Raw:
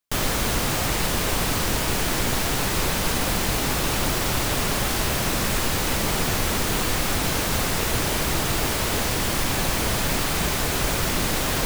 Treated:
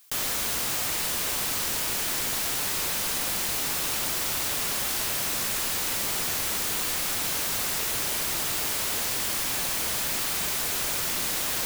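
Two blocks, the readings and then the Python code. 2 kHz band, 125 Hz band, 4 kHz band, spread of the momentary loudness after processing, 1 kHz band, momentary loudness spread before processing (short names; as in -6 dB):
-5.5 dB, -16.0 dB, -3.5 dB, 0 LU, -8.0 dB, 0 LU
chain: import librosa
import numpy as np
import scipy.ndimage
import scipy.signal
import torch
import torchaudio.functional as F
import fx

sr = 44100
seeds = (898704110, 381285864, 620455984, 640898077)

y = fx.tilt_eq(x, sr, slope=2.5)
y = fx.env_flatten(y, sr, amount_pct=50)
y = y * 10.0 ** (-8.5 / 20.0)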